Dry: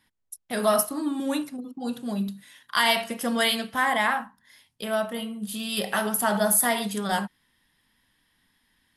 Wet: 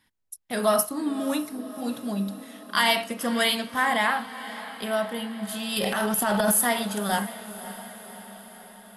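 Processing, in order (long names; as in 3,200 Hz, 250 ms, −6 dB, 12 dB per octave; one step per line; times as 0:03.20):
0:05.76–0:06.61: transient designer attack −6 dB, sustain +11 dB
feedback delay with all-pass diffusion 571 ms, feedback 60%, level −14.5 dB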